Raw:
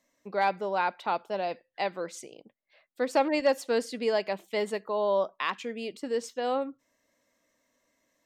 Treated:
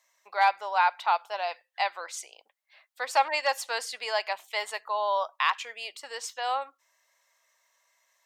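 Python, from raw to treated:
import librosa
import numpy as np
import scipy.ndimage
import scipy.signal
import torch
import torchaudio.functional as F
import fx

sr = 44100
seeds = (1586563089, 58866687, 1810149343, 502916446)

y = scipy.signal.sosfilt(scipy.signal.cheby1(3, 1.0, 830.0, 'highpass', fs=sr, output='sos'), x)
y = y * librosa.db_to_amplitude(6.0)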